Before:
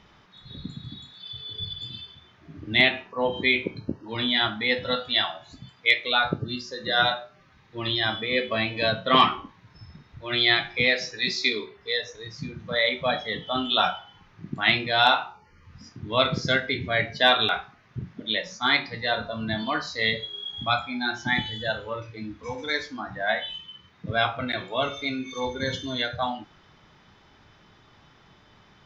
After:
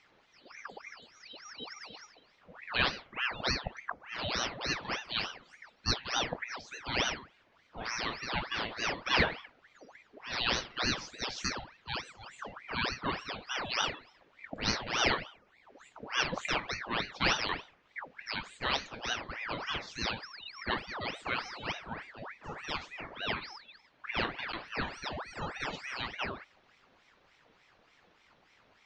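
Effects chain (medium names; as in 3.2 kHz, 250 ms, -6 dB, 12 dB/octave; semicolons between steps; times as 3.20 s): treble shelf 5.2 kHz -7.5 dB; ring modulator with a swept carrier 1.3 kHz, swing 75%, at 3.4 Hz; trim -6 dB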